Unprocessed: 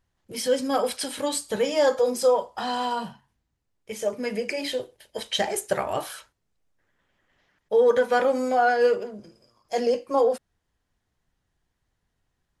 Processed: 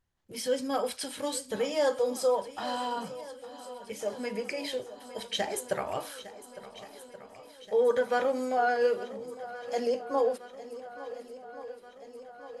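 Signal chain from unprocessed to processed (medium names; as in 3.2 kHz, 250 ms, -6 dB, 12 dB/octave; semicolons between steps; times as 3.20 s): shuffle delay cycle 1428 ms, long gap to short 1.5:1, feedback 60%, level -16 dB; trim -6 dB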